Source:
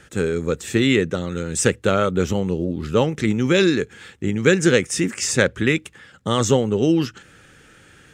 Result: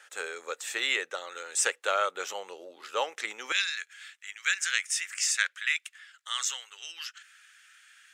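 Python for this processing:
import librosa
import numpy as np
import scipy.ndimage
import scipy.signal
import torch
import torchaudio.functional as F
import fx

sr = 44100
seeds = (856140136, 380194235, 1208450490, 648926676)

y = fx.highpass(x, sr, hz=fx.steps((0.0, 660.0), (3.52, 1500.0)), slope=24)
y = y * 10.0 ** (-4.0 / 20.0)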